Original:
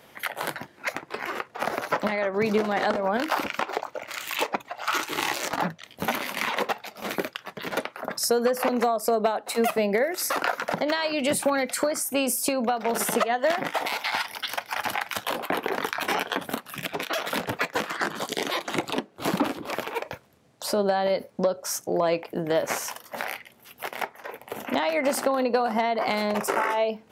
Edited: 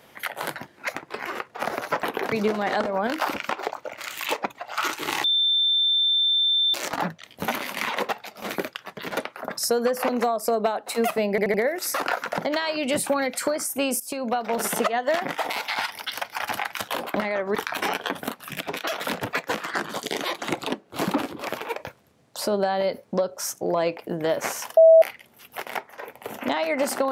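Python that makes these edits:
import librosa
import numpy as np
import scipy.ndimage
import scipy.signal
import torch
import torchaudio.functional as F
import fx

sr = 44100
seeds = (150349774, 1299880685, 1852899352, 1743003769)

y = fx.edit(x, sr, fx.swap(start_s=2.03, length_s=0.39, other_s=15.52, other_length_s=0.29),
    fx.insert_tone(at_s=5.34, length_s=1.5, hz=3560.0, db=-18.0),
    fx.stutter(start_s=9.9, slice_s=0.08, count=4),
    fx.fade_in_from(start_s=12.36, length_s=0.34, floor_db=-15.0),
    fx.bleep(start_s=23.03, length_s=0.25, hz=650.0, db=-8.5), tone=tone)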